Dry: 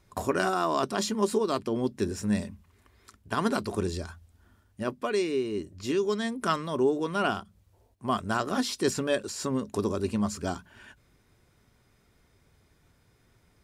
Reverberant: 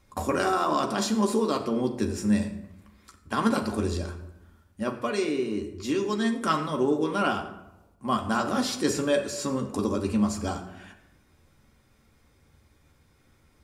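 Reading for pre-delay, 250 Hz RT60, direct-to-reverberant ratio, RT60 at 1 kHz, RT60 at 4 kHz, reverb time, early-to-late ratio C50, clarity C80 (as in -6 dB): 4 ms, 1.0 s, 2.0 dB, 0.90 s, 0.55 s, 0.90 s, 10.0 dB, 11.5 dB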